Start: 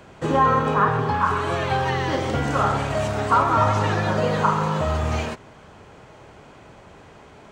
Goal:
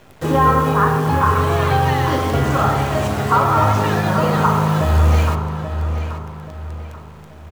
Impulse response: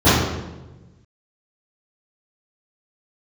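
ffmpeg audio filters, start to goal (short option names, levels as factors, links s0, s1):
-filter_complex "[0:a]acrusher=bits=7:dc=4:mix=0:aa=0.000001,asplit=2[s0][s1];[s1]adelay=832,lowpass=f=3700:p=1,volume=0.376,asplit=2[s2][s3];[s3]adelay=832,lowpass=f=3700:p=1,volume=0.37,asplit=2[s4][s5];[s5]adelay=832,lowpass=f=3700:p=1,volume=0.37,asplit=2[s6][s7];[s7]adelay=832,lowpass=f=3700:p=1,volume=0.37[s8];[s0][s2][s4][s6][s8]amix=inputs=5:normalize=0,asplit=2[s9][s10];[1:a]atrim=start_sample=2205[s11];[s10][s11]afir=irnorm=-1:irlink=0,volume=0.0141[s12];[s9][s12]amix=inputs=2:normalize=0,volume=1.33"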